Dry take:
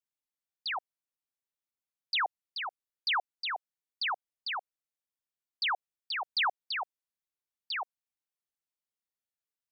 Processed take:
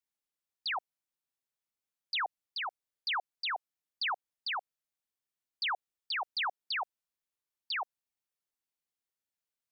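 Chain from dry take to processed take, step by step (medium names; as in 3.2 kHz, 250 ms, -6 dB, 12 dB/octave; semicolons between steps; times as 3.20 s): peak limiter -28.5 dBFS, peak gain reduction 4.5 dB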